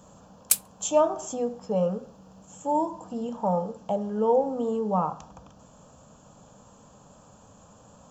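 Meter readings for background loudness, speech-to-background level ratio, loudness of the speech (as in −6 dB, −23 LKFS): −25.0 LKFS, −2.5 dB, −27.5 LKFS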